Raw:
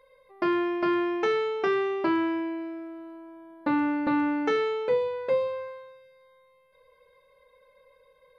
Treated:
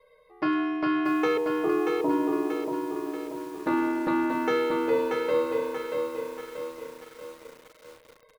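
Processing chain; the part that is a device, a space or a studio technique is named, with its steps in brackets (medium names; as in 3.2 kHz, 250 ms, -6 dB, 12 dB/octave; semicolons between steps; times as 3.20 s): 1.37–3.06 s: steep low-pass 1.1 kHz 72 dB/octave; ring-modulated robot voice (ring modulator 39 Hz; comb 6.4 ms, depth 88%); bit-crushed delay 634 ms, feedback 55%, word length 8-bit, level -4 dB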